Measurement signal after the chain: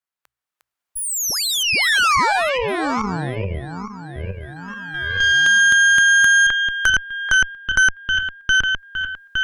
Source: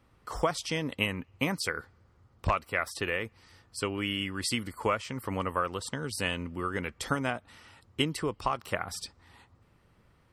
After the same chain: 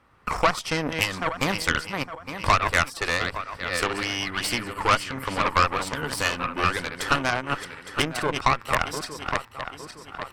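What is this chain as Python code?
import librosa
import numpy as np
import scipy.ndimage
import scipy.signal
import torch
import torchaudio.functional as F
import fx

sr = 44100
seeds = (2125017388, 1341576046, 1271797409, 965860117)

y = fx.reverse_delay_fb(x, sr, ms=431, feedback_pct=50, wet_db=-8)
y = fx.recorder_agc(y, sr, target_db=-19.0, rise_db_per_s=8.8, max_gain_db=30)
y = fx.peak_eq(y, sr, hz=1300.0, db=9.5, octaves=2.0)
y = fx.hum_notches(y, sr, base_hz=60, count=2)
y = fx.cheby_harmonics(y, sr, harmonics=(8,), levels_db=(-15,), full_scale_db=-4.5)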